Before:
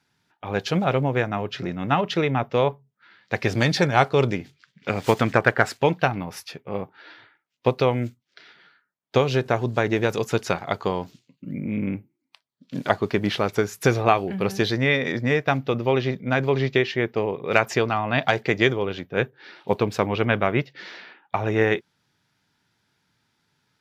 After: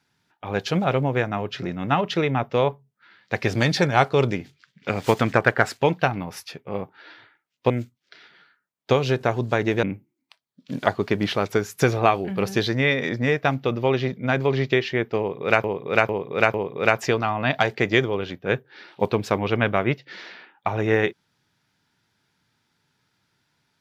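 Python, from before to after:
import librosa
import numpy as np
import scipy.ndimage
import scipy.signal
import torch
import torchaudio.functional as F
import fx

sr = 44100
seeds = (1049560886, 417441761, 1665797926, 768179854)

y = fx.edit(x, sr, fx.cut(start_s=7.7, length_s=0.25),
    fx.cut(start_s=10.08, length_s=1.78),
    fx.repeat(start_s=17.22, length_s=0.45, count=4), tone=tone)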